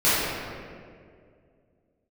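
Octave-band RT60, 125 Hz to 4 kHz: 2.7, 2.6, 2.6, 1.8, 1.7, 1.2 s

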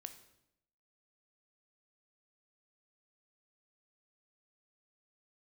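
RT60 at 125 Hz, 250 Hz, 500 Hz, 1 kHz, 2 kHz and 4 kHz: 0.90, 0.90, 0.85, 0.75, 0.70, 0.70 s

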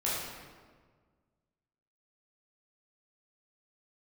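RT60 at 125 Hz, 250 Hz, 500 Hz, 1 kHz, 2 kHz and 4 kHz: 2.0, 1.9, 1.7, 1.5, 1.3, 1.0 s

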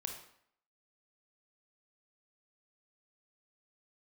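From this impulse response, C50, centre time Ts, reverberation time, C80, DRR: 5.5 dB, 26 ms, 0.65 s, 9.0 dB, 3.0 dB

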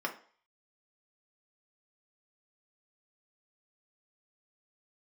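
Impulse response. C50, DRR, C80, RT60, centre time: 12.5 dB, 0.5 dB, 17.0 dB, 0.45 s, 11 ms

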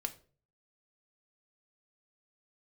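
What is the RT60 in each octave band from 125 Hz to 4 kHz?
0.70, 0.50, 0.50, 0.35, 0.30, 0.30 s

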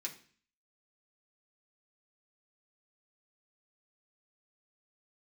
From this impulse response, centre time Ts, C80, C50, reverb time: 13 ms, 16.5 dB, 12.0 dB, 0.45 s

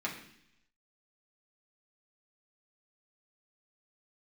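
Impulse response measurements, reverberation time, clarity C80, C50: 0.70 s, 10.5 dB, 7.5 dB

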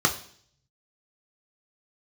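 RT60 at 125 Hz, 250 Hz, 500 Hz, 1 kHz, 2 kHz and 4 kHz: 1.2, 0.70, 0.60, 0.50, 0.55, 0.65 s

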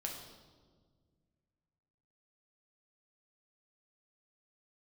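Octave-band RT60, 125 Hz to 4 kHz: 2.8, 2.4, 1.9, 1.4, 1.0, 1.1 s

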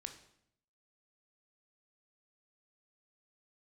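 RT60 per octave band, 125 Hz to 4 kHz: 0.95, 0.90, 0.75, 0.70, 0.65, 0.60 s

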